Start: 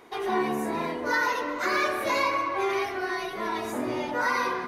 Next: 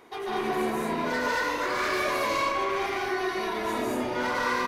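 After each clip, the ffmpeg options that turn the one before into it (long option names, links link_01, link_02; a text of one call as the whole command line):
ffmpeg -i in.wav -filter_complex "[0:a]asoftclip=type=tanh:threshold=-26dB,asplit=2[link_01][link_02];[link_02]aecho=0:1:145.8|198.3|230.3:0.794|0.794|0.891[link_03];[link_01][link_03]amix=inputs=2:normalize=0,volume=-1.5dB" out.wav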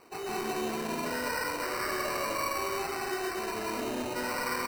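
ffmpeg -i in.wav -filter_complex "[0:a]asplit=2[link_01][link_02];[link_02]alimiter=level_in=1dB:limit=-24dB:level=0:latency=1,volume=-1dB,volume=-3dB[link_03];[link_01][link_03]amix=inputs=2:normalize=0,acrusher=samples=13:mix=1:aa=0.000001,volume=-8dB" out.wav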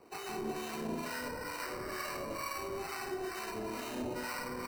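ffmpeg -i in.wav -filter_complex "[0:a]acrossover=split=270[link_01][link_02];[link_02]acompressor=threshold=-36dB:ratio=3[link_03];[link_01][link_03]amix=inputs=2:normalize=0,acrossover=split=780[link_04][link_05];[link_04]aeval=exprs='val(0)*(1-0.7/2+0.7/2*cos(2*PI*2.2*n/s))':channel_layout=same[link_06];[link_05]aeval=exprs='val(0)*(1-0.7/2-0.7/2*cos(2*PI*2.2*n/s))':channel_layout=same[link_07];[link_06][link_07]amix=inputs=2:normalize=0,volume=1dB" out.wav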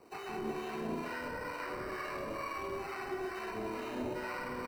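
ffmpeg -i in.wav -filter_complex "[0:a]acrossover=split=3400[link_01][link_02];[link_02]acompressor=threshold=-57dB:ratio=4:attack=1:release=60[link_03];[link_01][link_03]amix=inputs=2:normalize=0,asplit=2[link_04][link_05];[link_05]adelay=180,highpass=300,lowpass=3400,asoftclip=type=hard:threshold=-36dB,volume=-7dB[link_06];[link_04][link_06]amix=inputs=2:normalize=0" out.wav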